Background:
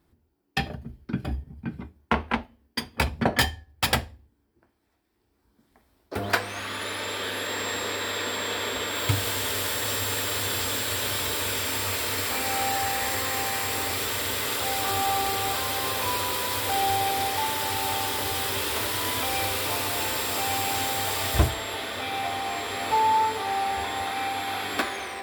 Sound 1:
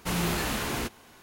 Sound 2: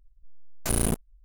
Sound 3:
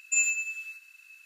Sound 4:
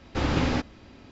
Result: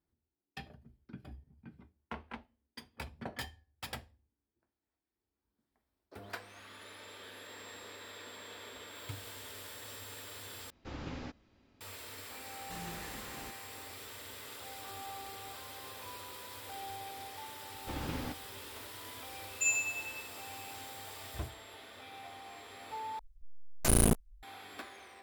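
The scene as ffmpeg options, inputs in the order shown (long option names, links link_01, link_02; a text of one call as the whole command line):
ffmpeg -i bed.wav -i cue0.wav -i cue1.wav -i cue2.wav -i cue3.wav -filter_complex "[4:a]asplit=2[link_01][link_02];[0:a]volume=-19.5dB,asplit=3[link_03][link_04][link_05];[link_03]atrim=end=10.704[link_06];[link_01]atrim=end=1.11,asetpts=PTS-STARTPTS,volume=-18dB[link_07];[link_04]atrim=start=11.806:end=23.194[link_08];[2:a]atrim=end=1.24,asetpts=PTS-STARTPTS,volume=-0.5dB[link_09];[link_05]atrim=start=24.426[link_10];[1:a]atrim=end=1.22,asetpts=PTS-STARTPTS,volume=-17.5dB,afade=type=in:duration=0.004:curve=hsin,afade=type=out:start_time=1.216:duration=0.004:curve=hsin,adelay=12640[link_11];[link_02]atrim=end=1.11,asetpts=PTS-STARTPTS,volume=-14.5dB,afade=type=in:duration=0.004:curve=hsin,afade=type=out:start_time=1.106:duration=0.004:curve=hsin,adelay=17720[link_12];[3:a]atrim=end=1.25,asetpts=PTS-STARTPTS,volume=-5.5dB,afade=type=in:duration=0.004:curve=hsin,afade=type=out:start_time=1.246:duration=0.004:curve=hsin,adelay=19490[link_13];[link_06][link_07]acrossfade=duration=0.004:curve1=hsin:curve2=hsin[link_14];[link_14][link_08]acrossfade=duration=0.004:curve1=hsin:curve2=hsin[link_15];[link_15][link_09]acrossfade=duration=0.004:curve1=hsin:curve2=hsin[link_16];[link_16][link_10]acrossfade=duration=0.004:curve1=hsin:curve2=hsin[link_17];[link_17][link_11][link_12][link_13]amix=inputs=4:normalize=0" out.wav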